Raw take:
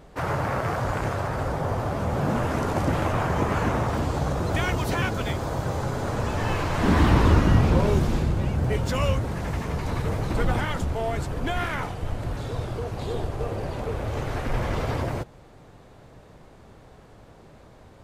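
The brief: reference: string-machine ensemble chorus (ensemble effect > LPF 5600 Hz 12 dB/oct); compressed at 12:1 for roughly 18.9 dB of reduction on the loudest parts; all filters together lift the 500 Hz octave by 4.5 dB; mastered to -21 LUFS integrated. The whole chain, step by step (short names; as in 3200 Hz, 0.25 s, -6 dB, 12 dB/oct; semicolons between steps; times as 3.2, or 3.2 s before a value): bell 500 Hz +5.5 dB; compressor 12:1, threshold -32 dBFS; ensemble effect; LPF 5600 Hz 12 dB/oct; gain +19 dB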